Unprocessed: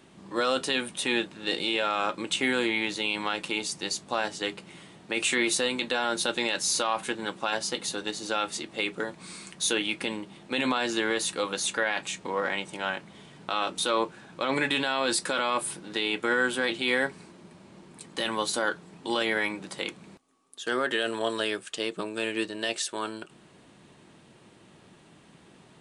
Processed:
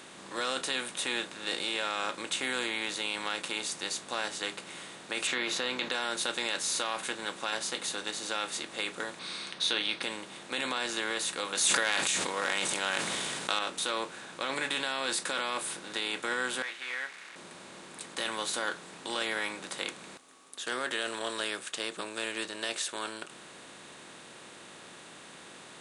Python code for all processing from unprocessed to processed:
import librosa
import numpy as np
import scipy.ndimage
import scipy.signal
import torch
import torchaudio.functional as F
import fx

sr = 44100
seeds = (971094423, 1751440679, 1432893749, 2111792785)

y = fx.chain(x, sr, fx.moving_average(points=5),
    fx.env_flatten(amount_pct=50), at=(5.27, 5.92))
y = fx.chain(y, sr, fx.savgol(points=15),
    fx.peak_eq(hz=3900.0, db=11.5, octaves=0.62), at=(9.19, 10.03))
y = fx.chain(y, sr, fx.transient(attack_db=5, sustain_db=10),
    fx.high_shelf(hz=3900.0, db=11.5),
    fx.sustainer(db_per_s=22.0), at=(11.55, 13.59))
y = fx.chain(y, sr, fx.delta_mod(bps=64000, step_db=-37.0),
    fx.bandpass_q(hz=2000.0, q=3.1), at=(16.62, 17.36))
y = fx.bin_compress(y, sr, power=0.6)
y = fx.low_shelf(y, sr, hz=290.0, db=-9.5)
y = y * 10.0 ** (-9.0 / 20.0)